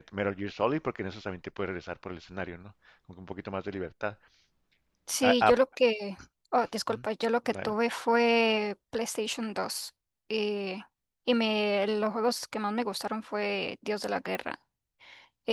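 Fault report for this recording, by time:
0:14.35: click −19 dBFS

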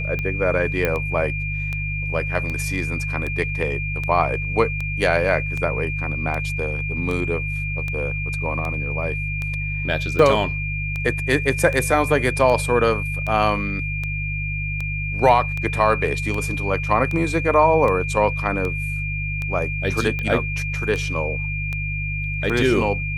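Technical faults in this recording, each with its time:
mains hum 50 Hz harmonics 3 −27 dBFS
scratch tick 78 rpm −15 dBFS
whistle 2,400 Hz −27 dBFS
0:00.85: click −8 dBFS

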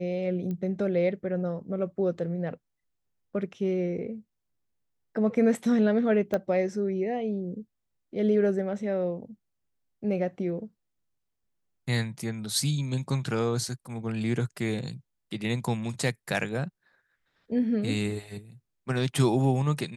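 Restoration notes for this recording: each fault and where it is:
0:00.51: click −24 dBFS
0:06.34: click −16 dBFS

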